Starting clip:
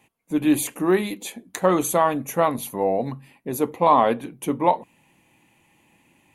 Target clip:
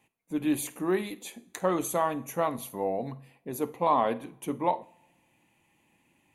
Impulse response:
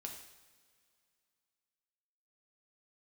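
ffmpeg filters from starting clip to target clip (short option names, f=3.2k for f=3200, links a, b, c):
-filter_complex "[0:a]asplit=2[a][b];[1:a]atrim=start_sample=2205,asetrate=74970,aresample=44100,adelay=51[c];[b][c]afir=irnorm=-1:irlink=0,volume=-9dB[d];[a][d]amix=inputs=2:normalize=0,volume=-8dB"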